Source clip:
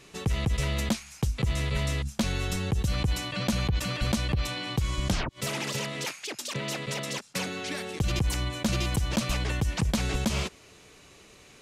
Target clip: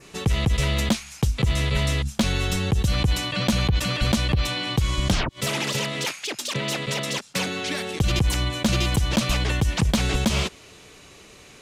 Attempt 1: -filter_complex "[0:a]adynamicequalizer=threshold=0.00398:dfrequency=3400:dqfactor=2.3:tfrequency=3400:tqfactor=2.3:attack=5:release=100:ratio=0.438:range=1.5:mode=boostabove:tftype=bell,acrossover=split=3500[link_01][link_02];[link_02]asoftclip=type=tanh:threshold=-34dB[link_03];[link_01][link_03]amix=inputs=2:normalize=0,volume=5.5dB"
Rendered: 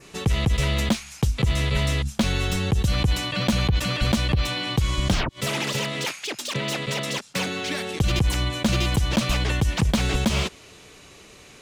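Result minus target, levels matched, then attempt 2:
soft clipping: distortion +9 dB
-filter_complex "[0:a]adynamicequalizer=threshold=0.00398:dfrequency=3400:dqfactor=2.3:tfrequency=3400:tqfactor=2.3:attack=5:release=100:ratio=0.438:range=1.5:mode=boostabove:tftype=bell,acrossover=split=3500[link_01][link_02];[link_02]asoftclip=type=tanh:threshold=-26dB[link_03];[link_01][link_03]amix=inputs=2:normalize=0,volume=5.5dB"

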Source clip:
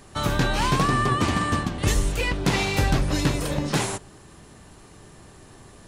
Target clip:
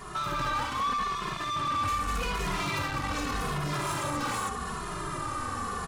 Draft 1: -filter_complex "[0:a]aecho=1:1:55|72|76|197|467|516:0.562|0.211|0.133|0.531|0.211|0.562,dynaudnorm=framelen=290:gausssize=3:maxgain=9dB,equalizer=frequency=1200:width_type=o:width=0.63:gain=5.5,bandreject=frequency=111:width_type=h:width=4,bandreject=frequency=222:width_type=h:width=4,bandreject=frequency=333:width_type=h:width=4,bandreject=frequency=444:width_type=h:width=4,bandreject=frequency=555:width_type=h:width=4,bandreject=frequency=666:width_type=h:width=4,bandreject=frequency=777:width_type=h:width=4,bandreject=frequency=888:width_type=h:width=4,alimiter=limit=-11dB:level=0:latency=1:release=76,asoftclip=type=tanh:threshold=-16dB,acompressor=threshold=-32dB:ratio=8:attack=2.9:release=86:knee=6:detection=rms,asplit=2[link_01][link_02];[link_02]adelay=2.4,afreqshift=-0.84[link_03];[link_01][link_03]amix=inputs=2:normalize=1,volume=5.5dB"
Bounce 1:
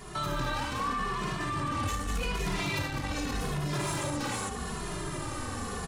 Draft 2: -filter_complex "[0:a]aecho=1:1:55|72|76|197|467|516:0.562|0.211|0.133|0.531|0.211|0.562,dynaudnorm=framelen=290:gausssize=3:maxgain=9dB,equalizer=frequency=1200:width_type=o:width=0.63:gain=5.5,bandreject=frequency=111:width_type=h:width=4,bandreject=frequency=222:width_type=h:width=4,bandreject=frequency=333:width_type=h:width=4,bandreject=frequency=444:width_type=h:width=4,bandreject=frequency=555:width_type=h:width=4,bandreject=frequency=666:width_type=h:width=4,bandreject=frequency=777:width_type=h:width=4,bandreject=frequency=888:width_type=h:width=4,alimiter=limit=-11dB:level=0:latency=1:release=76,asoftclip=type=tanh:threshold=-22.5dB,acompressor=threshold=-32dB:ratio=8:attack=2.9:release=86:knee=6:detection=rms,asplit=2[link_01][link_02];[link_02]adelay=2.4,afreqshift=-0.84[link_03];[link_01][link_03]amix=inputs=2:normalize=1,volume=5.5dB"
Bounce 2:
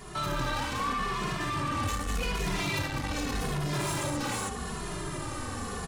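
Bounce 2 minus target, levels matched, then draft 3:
1,000 Hz band −3.0 dB
-filter_complex "[0:a]aecho=1:1:55|72|76|197|467|516:0.562|0.211|0.133|0.531|0.211|0.562,dynaudnorm=framelen=290:gausssize=3:maxgain=9dB,equalizer=frequency=1200:width_type=o:width=0.63:gain=16.5,bandreject=frequency=111:width_type=h:width=4,bandreject=frequency=222:width_type=h:width=4,bandreject=frequency=333:width_type=h:width=4,bandreject=frequency=444:width_type=h:width=4,bandreject=frequency=555:width_type=h:width=4,bandreject=frequency=666:width_type=h:width=4,bandreject=frequency=777:width_type=h:width=4,bandreject=frequency=888:width_type=h:width=4,alimiter=limit=-11dB:level=0:latency=1:release=76,asoftclip=type=tanh:threshold=-22.5dB,acompressor=threshold=-32dB:ratio=8:attack=2.9:release=86:knee=6:detection=rms,asplit=2[link_01][link_02];[link_02]adelay=2.4,afreqshift=-0.84[link_03];[link_01][link_03]amix=inputs=2:normalize=1,volume=5.5dB"

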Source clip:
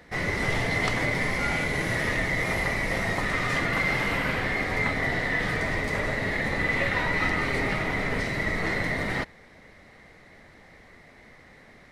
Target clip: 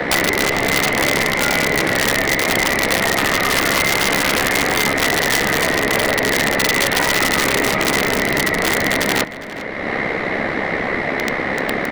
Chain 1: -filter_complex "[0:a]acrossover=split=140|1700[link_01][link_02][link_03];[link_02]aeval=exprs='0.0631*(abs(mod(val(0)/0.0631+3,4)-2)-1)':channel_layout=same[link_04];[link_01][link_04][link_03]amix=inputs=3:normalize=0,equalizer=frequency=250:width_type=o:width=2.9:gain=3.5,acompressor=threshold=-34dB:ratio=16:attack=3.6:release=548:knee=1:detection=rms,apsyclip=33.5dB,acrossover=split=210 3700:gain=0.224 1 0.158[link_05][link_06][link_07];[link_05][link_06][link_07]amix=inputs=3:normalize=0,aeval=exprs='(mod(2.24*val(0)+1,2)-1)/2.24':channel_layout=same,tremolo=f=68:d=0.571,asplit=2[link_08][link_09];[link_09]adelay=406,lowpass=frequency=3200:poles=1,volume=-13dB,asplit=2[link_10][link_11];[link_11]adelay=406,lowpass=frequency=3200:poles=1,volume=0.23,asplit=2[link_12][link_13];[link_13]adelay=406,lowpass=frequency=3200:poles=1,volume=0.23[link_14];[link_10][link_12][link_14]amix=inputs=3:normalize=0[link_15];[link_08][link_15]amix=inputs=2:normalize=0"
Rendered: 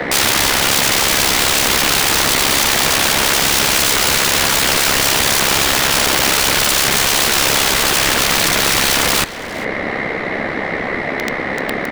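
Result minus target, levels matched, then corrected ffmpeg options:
downward compressor: peak gain reduction −6 dB
-filter_complex "[0:a]acrossover=split=140|1700[link_01][link_02][link_03];[link_02]aeval=exprs='0.0631*(abs(mod(val(0)/0.0631+3,4)-2)-1)':channel_layout=same[link_04];[link_01][link_04][link_03]amix=inputs=3:normalize=0,equalizer=frequency=250:width_type=o:width=2.9:gain=3.5,acompressor=threshold=-40.5dB:ratio=16:attack=3.6:release=548:knee=1:detection=rms,apsyclip=33.5dB,acrossover=split=210 3700:gain=0.224 1 0.158[link_05][link_06][link_07];[link_05][link_06][link_07]amix=inputs=3:normalize=0,aeval=exprs='(mod(2.24*val(0)+1,2)-1)/2.24':channel_layout=same,tremolo=f=68:d=0.571,asplit=2[link_08][link_09];[link_09]adelay=406,lowpass=frequency=3200:poles=1,volume=-13dB,asplit=2[link_10][link_11];[link_11]adelay=406,lowpass=frequency=3200:poles=1,volume=0.23,asplit=2[link_12][link_13];[link_13]adelay=406,lowpass=frequency=3200:poles=1,volume=0.23[link_14];[link_10][link_12][link_14]amix=inputs=3:normalize=0[link_15];[link_08][link_15]amix=inputs=2:normalize=0"

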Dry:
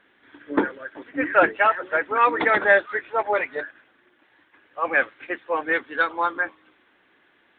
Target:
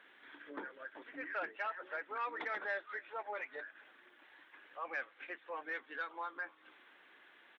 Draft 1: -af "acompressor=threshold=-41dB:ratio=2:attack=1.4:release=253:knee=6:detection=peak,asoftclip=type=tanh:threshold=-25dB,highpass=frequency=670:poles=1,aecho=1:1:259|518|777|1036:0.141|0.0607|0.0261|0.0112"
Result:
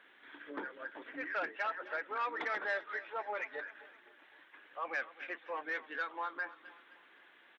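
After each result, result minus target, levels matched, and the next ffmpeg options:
echo-to-direct +11.5 dB; downward compressor: peak gain reduction −4 dB
-af "acompressor=threshold=-41dB:ratio=2:attack=1.4:release=253:knee=6:detection=peak,asoftclip=type=tanh:threshold=-25dB,highpass=frequency=670:poles=1,aecho=1:1:259|518:0.0376|0.0162"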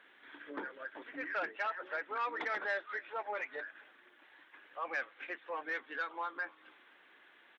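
downward compressor: peak gain reduction −4 dB
-af "acompressor=threshold=-48.5dB:ratio=2:attack=1.4:release=253:knee=6:detection=peak,asoftclip=type=tanh:threshold=-25dB,highpass=frequency=670:poles=1,aecho=1:1:259|518:0.0376|0.0162"

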